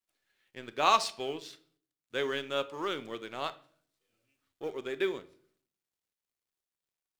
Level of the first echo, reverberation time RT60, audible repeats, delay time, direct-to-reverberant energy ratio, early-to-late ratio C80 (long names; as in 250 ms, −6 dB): no echo audible, 0.50 s, no echo audible, no echo audible, 11.5 dB, 22.0 dB